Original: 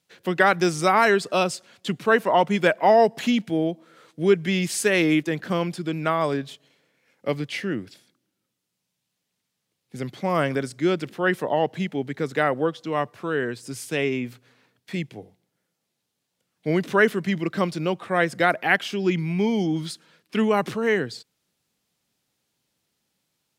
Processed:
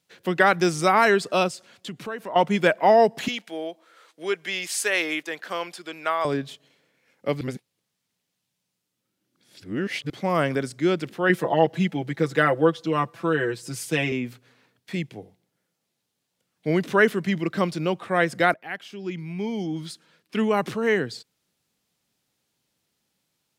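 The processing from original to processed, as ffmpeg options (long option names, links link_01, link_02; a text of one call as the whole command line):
ffmpeg -i in.wav -filter_complex "[0:a]asettb=1/sr,asplit=3[link_01][link_02][link_03];[link_01]atrim=end=1.484[link_04];[link_02]atrim=start=1.48:end=2.36,asetpts=PTS-STARTPTS,afade=type=in:duration=0.004:curve=qsin,afade=type=out:start_time=0.876:duration=0.004:curve=qsin,acompressor=threshold=-35dB:ratio=2.5:attack=3.2:release=140:knee=1:detection=peak[link_05];[link_03]atrim=start=2.356[link_06];[link_04][link_05]acrossfade=duration=0.004:curve1=hsin:curve2=qsin[link_07];[link_07][link_06]acrossfade=duration=0.004:curve1=qsin:curve2=hsin,asettb=1/sr,asplit=3[link_08][link_09][link_10];[link_08]atrim=end=3.284[link_11];[link_09]atrim=start=3.28:end=6.25,asetpts=PTS-STARTPTS,afade=type=in:duration=0.004:curve=qsin,afade=type=out:start_time=2.966:duration=0.004:curve=qsin,highpass=630[link_12];[link_10]atrim=start=6.246[link_13];[link_11][link_12]acrossfade=duration=0.004:curve1=hsin:curve2=qsin[link_14];[link_14][link_13]acrossfade=duration=0.004:curve1=qsin:curve2=hsin,asettb=1/sr,asplit=3[link_15][link_16][link_17];[link_15]atrim=end=11.294[link_18];[link_16]atrim=start=11.29:end=14.12,asetpts=PTS-STARTPTS,afade=type=in:duration=0.004:curve=qsin,afade=type=out:start_time=2.826:duration=0.004:curve=qsin,aecho=1:1:6:0.83,atrim=end_sample=124803[link_19];[link_17]atrim=start=14.116[link_20];[link_18][link_19]acrossfade=duration=0.004:curve1=hsin:curve2=qsin[link_21];[link_21][link_20]acrossfade=duration=0.004:curve1=qsin:curve2=hsin,asplit=4[link_22][link_23][link_24][link_25];[link_22]atrim=end=7.412[link_26];[link_23]atrim=start=7.408:end=10.102,asetpts=PTS-STARTPTS,areverse[link_27];[link_24]atrim=start=10.098:end=18.54,asetpts=PTS-STARTPTS,afade=type=out:start_time=8.438:duration=0.004:curve=hsin:silence=0.141254[link_28];[link_25]atrim=start=18.54,asetpts=PTS-STARTPTS,afade=type=in:duration=2.38:silence=0.141254[link_29];[link_26][link_27]acrossfade=duration=0.004:curve1=hsin:curve2=hsin[link_30];[link_28][link_29]concat=n=2:v=0:a=1[link_31];[link_30][link_31]acrossfade=duration=0.004:curve1=hsin:curve2=hsin" out.wav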